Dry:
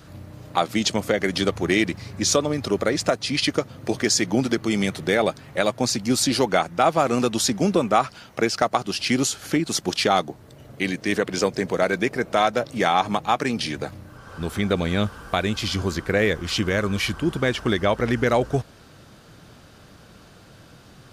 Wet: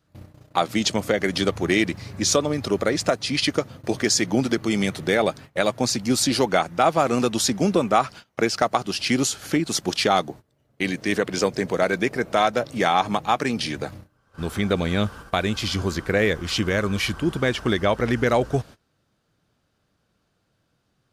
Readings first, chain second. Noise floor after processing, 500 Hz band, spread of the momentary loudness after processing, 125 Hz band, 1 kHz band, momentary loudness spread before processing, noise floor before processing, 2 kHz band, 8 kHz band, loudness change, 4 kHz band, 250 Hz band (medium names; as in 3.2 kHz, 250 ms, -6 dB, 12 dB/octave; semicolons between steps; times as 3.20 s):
-71 dBFS, 0.0 dB, 6 LU, 0.0 dB, 0.0 dB, 7 LU, -49 dBFS, 0.0 dB, 0.0 dB, 0.0 dB, 0.0 dB, 0.0 dB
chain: gate -38 dBFS, range -22 dB